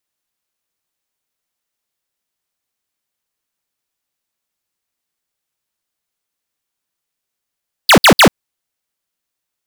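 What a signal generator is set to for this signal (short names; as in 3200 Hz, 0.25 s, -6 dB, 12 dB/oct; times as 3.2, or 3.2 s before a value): burst of laser zaps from 5100 Hz, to 140 Hz, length 0.09 s square, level -5.5 dB, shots 3, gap 0.06 s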